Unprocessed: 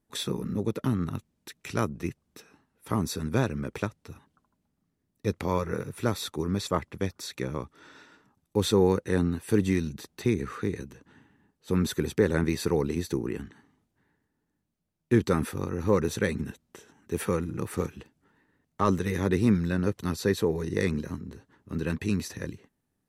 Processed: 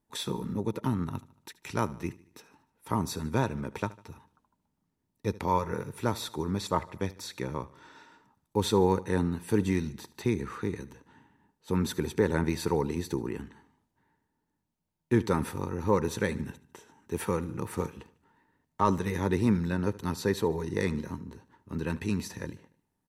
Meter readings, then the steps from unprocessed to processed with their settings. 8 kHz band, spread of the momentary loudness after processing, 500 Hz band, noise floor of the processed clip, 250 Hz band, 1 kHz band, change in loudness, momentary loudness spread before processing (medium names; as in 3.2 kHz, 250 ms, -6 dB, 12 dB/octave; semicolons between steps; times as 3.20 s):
-2.5 dB, 12 LU, -2.5 dB, -80 dBFS, -2.5 dB, +2.5 dB, -2.0 dB, 12 LU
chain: peaking EQ 920 Hz +11.5 dB 0.22 oct; on a send: feedback delay 75 ms, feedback 50%, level -19.5 dB; on the sum: trim -2.5 dB